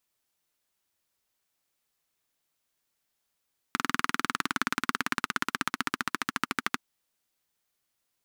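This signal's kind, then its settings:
pulse-train model of a single-cylinder engine, changing speed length 3.02 s, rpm 2,500, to 1,500, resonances 260/1,300 Hz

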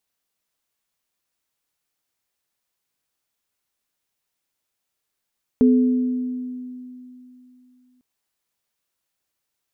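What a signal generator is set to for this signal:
inharmonic partials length 2.40 s, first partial 251 Hz, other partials 431 Hz, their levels −8 dB, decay 3.04 s, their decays 1.45 s, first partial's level −10.5 dB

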